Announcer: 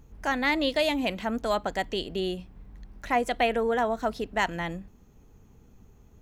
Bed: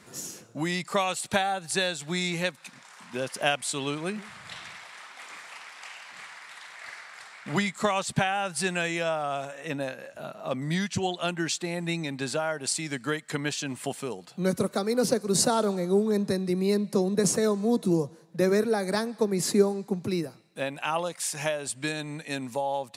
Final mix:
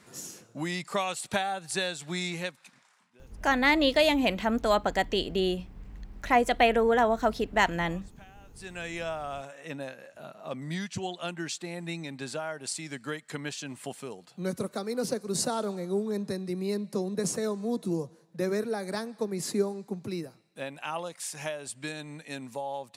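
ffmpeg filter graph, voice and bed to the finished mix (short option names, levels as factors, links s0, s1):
-filter_complex "[0:a]adelay=3200,volume=1.33[s0];[1:a]volume=7.94,afade=t=out:st=2.23:d=0.88:silence=0.0630957,afade=t=in:st=8.52:d=0.45:silence=0.0841395[s1];[s0][s1]amix=inputs=2:normalize=0"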